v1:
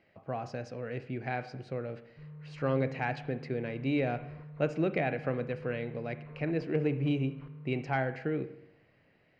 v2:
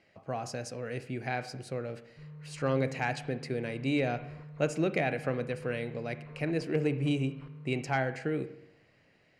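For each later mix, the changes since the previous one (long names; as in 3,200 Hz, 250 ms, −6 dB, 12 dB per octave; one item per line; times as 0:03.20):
master: remove high-frequency loss of the air 220 metres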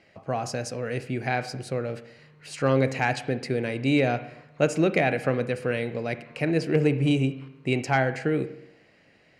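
speech +7.0 dB
background: add spectral tilt +3.5 dB per octave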